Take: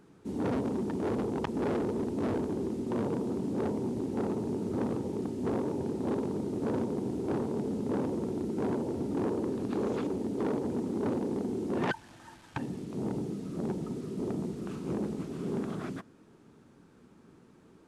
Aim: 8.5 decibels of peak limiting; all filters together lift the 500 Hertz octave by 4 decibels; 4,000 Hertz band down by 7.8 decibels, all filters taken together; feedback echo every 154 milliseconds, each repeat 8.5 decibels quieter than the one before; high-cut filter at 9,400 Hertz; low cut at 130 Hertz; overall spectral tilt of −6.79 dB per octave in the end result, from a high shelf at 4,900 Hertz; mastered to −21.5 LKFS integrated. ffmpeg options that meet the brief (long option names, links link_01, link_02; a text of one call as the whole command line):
ffmpeg -i in.wav -af "highpass=130,lowpass=9400,equalizer=frequency=500:width_type=o:gain=5.5,equalizer=frequency=4000:width_type=o:gain=-8.5,highshelf=frequency=4900:gain=-5,alimiter=level_in=2.5dB:limit=-24dB:level=0:latency=1,volume=-2.5dB,aecho=1:1:154|308|462|616:0.376|0.143|0.0543|0.0206,volume=12.5dB" out.wav